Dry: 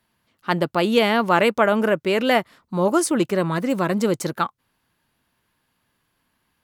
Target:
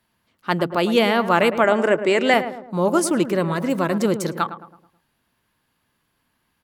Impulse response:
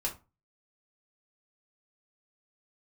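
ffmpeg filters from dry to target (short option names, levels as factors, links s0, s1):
-filter_complex "[0:a]asettb=1/sr,asplit=3[s0][s1][s2];[s0]atrim=end=1.644[s3];[s1]atrim=start=1.64:end=2.34,asetpts=PTS-STARTPTS,afade=t=in:d=0.004:c=qsin,afade=t=out:st=0.696:d=0.004:c=qsin,highpass=120,equalizer=f=200:t=q:w=4:g=-4,equalizer=f=340:t=q:w=4:g=6,equalizer=f=750:t=q:w=4:g=4,equalizer=f=2000:t=q:w=4:g=6,equalizer=f=7700:t=q:w=4:g=10,lowpass=f=8800:w=0.5412,lowpass=f=8800:w=1.3066[s4];[s2]atrim=start=2.336[s5];[s3][s4]acrossfade=d=0.004:c1=hsin:c2=qsin[s6];[s6][s5]acrossfade=d=0.004:c1=qsin:c2=hsin,asplit=2[s7][s8];[s8]adelay=108,lowpass=f=1200:p=1,volume=0.316,asplit=2[s9][s10];[s10]adelay=108,lowpass=f=1200:p=1,volume=0.49,asplit=2[s11][s12];[s12]adelay=108,lowpass=f=1200:p=1,volume=0.49,asplit=2[s13][s14];[s14]adelay=108,lowpass=f=1200:p=1,volume=0.49,asplit=2[s15][s16];[s16]adelay=108,lowpass=f=1200:p=1,volume=0.49[s17];[s7][s9][s11][s13][s15][s17]amix=inputs=6:normalize=0"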